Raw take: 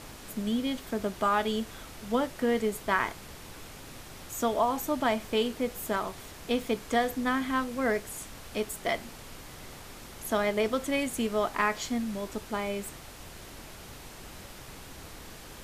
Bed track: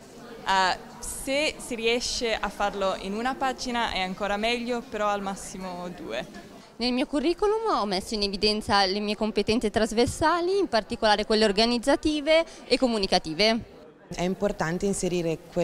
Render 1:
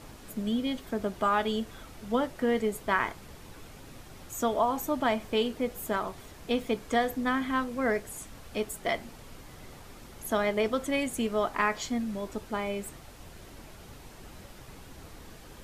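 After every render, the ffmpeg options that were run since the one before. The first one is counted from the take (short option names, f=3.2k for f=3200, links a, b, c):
-af "afftdn=nr=6:nf=-46"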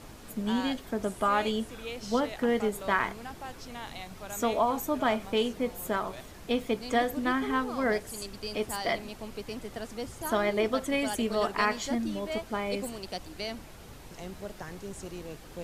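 -filter_complex "[1:a]volume=-15dB[a];[0:a][a]amix=inputs=2:normalize=0"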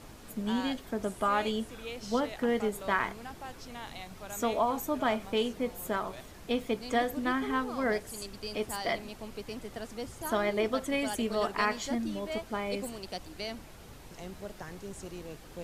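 -af "volume=-2dB"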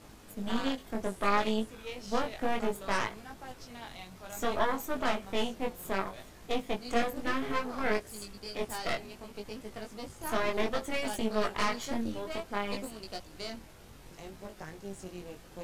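-af "aeval=exprs='0.2*(cos(1*acos(clip(val(0)/0.2,-1,1)))-cos(1*PI/2))+0.0447*(cos(6*acos(clip(val(0)/0.2,-1,1)))-cos(6*PI/2))':c=same,flanger=delay=18.5:depth=3.9:speed=0.62"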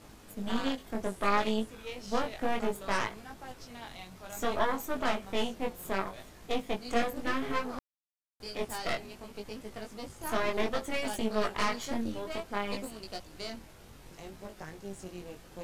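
-filter_complex "[0:a]asplit=3[a][b][c];[a]atrim=end=7.79,asetpts=PTS-STARTPTS,afade=t=out:st=7.786:d=0.004:c=hsin[d];[b]atrim=start=7.79:end=8.4,asetpts=PTS-STARTPTS,volume=0[e];[c]atrim=start=8.4,asetpts=PTS-STARTPTS,afade=t=in:d=0.004:c=hsin[f];[d][e][f]concat=n=3:v=0:a=1"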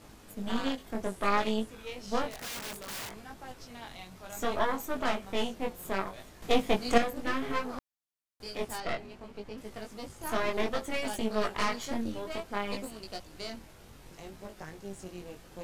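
-filter_complex "[0:a]asettb=1/sr,asplit=3[a][b][c];[a]atrim=end=2.304[d];[b]atrim=start=2.3:end=3.18,asetpts=PTS-STARTPTS,afade=t=in:d=0.004:c=qsin,afade=t=out:st=0.876:d=0.004:c=qsin,aeval=exprs='(mod(44.7*val(0)+1,2)-1)/44.7':c=same[e];[c]atrim=start=3.176[f];[d][e]acrossfade=d=0.004:c1=hsin:c2=qsin[g];[g][f]acrossfade=d=0.004:c1=qsin:c2=hsin,asettb=1/sr,asplit=3[h][i][j];[h]atrim=end=6.424[k];[i]atrim=start=6.42:end=6.98,asetpts=PTS-STARTPTS,afade=t=in:d=0.004:c=qsin,afade=t=out:st=0.556:d=0.004:c=qsin,acontrast=74[l];[j]atrim=start=6.976[m];[k][l]acrossfade=d=0.004:c1=hsin:c2=qsin[n];[n][m]acrossfade=d=0.004:c1=qsin:c2=hsin,asettb=1/sr,asplit=3[o][p][q];[o]atrim=end=8.804[r];[p]atrim=start=8.8:end=9.58,asetpts=PTS-STARTPTS,afade=t=in:d=0.004:c=qsin,afade=t=out:st=0.776:d=0.004:c=qsin,lowpass=f=2.5k:p=1[s];[q]atrim=start=9.576[t];[r][s]acrossfade=d=0.004:c1=hsin:c2=qsin[u];[u][t]acrossfade=d=0.004:c1=qsin:c2=hsin"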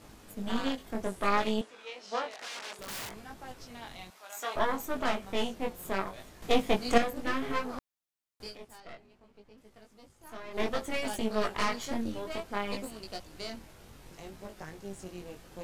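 -filter_complex "[0:a]asettb=1/sr,asplit=3[a][b][c];[a]atrim=end=1.614[d];[b]atrim=start=1.61:end=2.79,asetpts=PTS-STARTPTS,afade=t=in:d=0.004:c=qsin,afade=t=out:st=1.176:d=0.004:c=qsin,highpass=490,lowpass=6.1k[e];[c]atrim=start=2.786[f];[d][e]acrossfade=d=0.004:c1=hsin:c2=qsin[g];[g][f]acrossfade=d=0.004:c1=qsin:c2=hsin,asettb=1/sr,asplit=3[h][i][j];[h]atrim=end=4.104[k];[i]atrim=start=4.1:end=4.56,asetpts=PTS-STARTPTS,afade=t=in:d=0.004:c=qsin,afade=t=out:st=0.456:d=0.004:c=qsin,highpass=720[l];[j]atrim=start=4.556[m];[k][l]acrossfade=d=0.004:c1=hsin:c2=qsin[n];[n][m]acrossfade=d=0.004:c1=qsin:c2=hsin,asplit=3[o][p][q];[o]atrim=end=8.58,asetpts=PTS-STARTPTS,afade=t=out:st=8.46:d=0.12:silence=0.199526[r];[p]atrim=start=8.58:end=10.5,asetpts=PTS-STARTPTS,volume=-14dB[s];[q]atrim=start=10.5,asetpts=PTS-STARTPTS,afade=t=in:d=0.12:silence=0.199526[t];[r][s][t]concat=n=3:v=0:a=1"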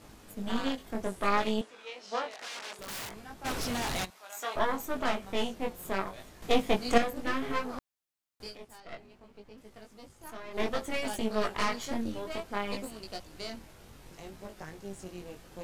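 -filter_complex "[0:a]asplit=3[a][b][c];[a]afade=t=out:st=3.44:d=0.02[d];[b]aeval=exprs='0.0355*sin(PI/2*5.62*val(0)/0.0355)':c=same,afade=t=in:st=3.44:d=0.02,afade=t=out:st=4.04:d=0.02[e];[c]afade=t=in:st=4.04:d=0.02[f];[d][e][f]amix=inputs=3:normalize=0,asettb=1/sr,asplit=3[g][h][i];[g]atrim=end=8.924[j];[h]atrim=start=8.92:end=10.31,asetpts=PTS-STARTPTS,afade=t=in:d=0.004:c=qsin,afade=t=out:st=1.386:d=0.004:c=qsin,acontrast=27[k];[i]atrim=start=10.306[l];[j][k]acrossfade=d=0.004:c1=hsin:c2=qsin[m];[m][l]acrossfade=d=0.004:c1=qsin:c2=hsin"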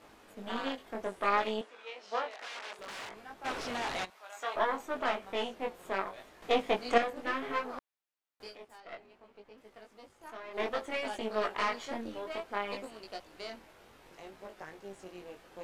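-filter_complex "[0:a]acrossover=split=9500[a][b];[b]acompressor=threshold=-60dB:ratio=4:attack=1:release=60[c];[a][c]amix=inputs=2:normalize=0,bass=f=250:g=-14,treble=f=4k:g=-9"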